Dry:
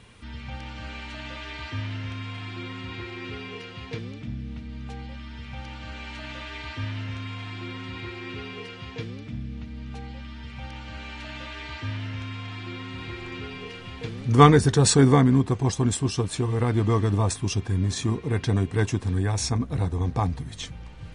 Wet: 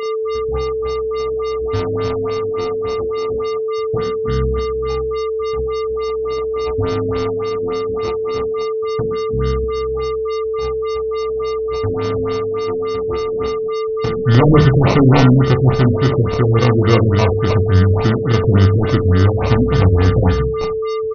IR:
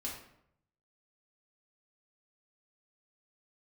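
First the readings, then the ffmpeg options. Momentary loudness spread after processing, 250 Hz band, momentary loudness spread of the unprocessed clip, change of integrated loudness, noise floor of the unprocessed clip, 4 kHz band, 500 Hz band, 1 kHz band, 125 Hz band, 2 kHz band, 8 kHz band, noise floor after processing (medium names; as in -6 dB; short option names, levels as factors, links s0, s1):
9 LU, +8.0 dB, 19 LU, +9.0 dB, -41 dBFS, +4.5 dB, +15.0 dB, +7.0 dB, +10.0 dB, +7.0 dB, no reading, -20 dBFS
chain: -filter_complex "[0:a]agate=range=0.0447:threshold=0.02:ratio=16:detection=peak,equalizer=f=7500:t=o:w=0.92:g=-9,bandreject=f=51.31:t=h:w=4,bandreject=f=102.62:t=h:w=4,bandreject=f=153.93:t=h:w=4,apsyclip=5.31,aphaser=in_gain=1:out_gain=1:delay=2:decay=0.22:speed=0.15:type=triangular,aeval=exprs='val(0)+0.141*sin(2*PI*440*n/s)':c=same,acrusher=samples=27:mix=1:aa=0.000001,asoftclip=type=tanh:threshold=0.794,asplit=2[s0][s1];[s1]adelay=32,volume=0.355[s2];[s0][s2]amix=inputs=2:normalize=0,asplit=2[s3][s4];[s4]aecho=0:1:61|122|183:0.316|0.0664|0.0139[s5];[s3][s5]amix=inputs=2:normalize=0,afftfilt=real='re*lt(b*sr/1024,580*pow(6500/580,0.5+0.5*sin(2*PI*3.5*pts/sr)))':imag='im*lt(b*sr/1024,580*pow(6500/580,0.5+0.5*sin(2*PI*3.5*pts/sr)))':win_size=1024:overlap=0.75,volume=0.708"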